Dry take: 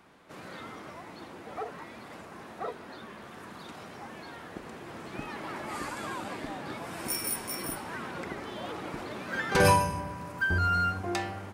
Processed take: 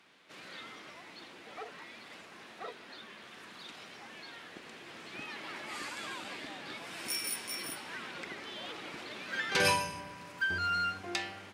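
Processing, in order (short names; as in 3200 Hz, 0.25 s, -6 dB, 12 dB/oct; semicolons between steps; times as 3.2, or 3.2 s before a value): weighting filter D; gain -8 dB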